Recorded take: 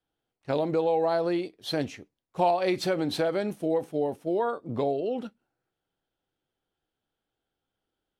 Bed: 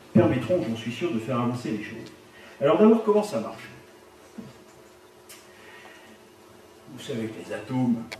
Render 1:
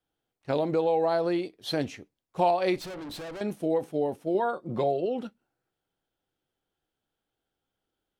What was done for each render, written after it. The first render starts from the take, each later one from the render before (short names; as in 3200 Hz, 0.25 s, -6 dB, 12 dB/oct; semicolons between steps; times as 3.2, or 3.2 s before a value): 2.76–3.41 tube stage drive 37 dB, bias 0.6; 4.34–5.06 comb 5.6 ms, depth 54%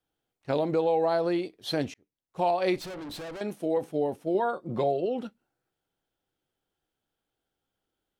1.94–2.63 fade in; 3.36–3.77 HPF 220 Hz 6 dB/oct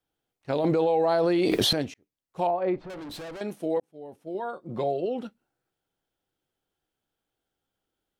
0.64–1.73 fast leveller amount 100%; 2.47–2.9 LPF 1300 Hz; 3.8–5.03 fade in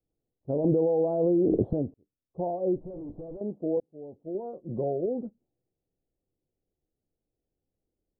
inverse Chebyshev low-pass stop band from 2000 Hz, stop band 60 dB; low shelf 86 Hz +7.5 dB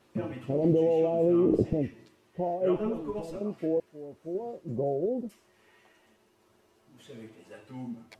add bed -15 dB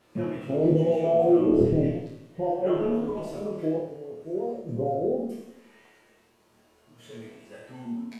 flutter echo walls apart 4.4 m, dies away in 0.65 s; warbling echo 90 ms, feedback 50%, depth 181 cents, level -11.5 dB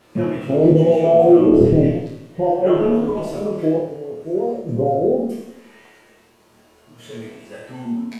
gain +9 dB; limiter -2 dBFS, peak gain reduction 2 dB